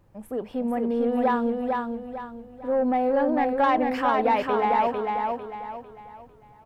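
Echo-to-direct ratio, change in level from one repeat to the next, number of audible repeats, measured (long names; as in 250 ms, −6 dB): −3.0 dB, −9.0 dB, 4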